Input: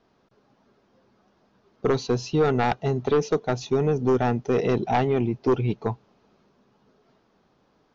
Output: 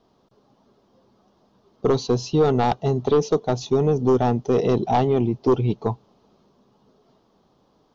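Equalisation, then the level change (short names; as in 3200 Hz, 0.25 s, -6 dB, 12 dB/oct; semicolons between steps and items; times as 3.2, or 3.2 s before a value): band shelf 1900 Hz -8 dB 1.1 oct; +3.0 dB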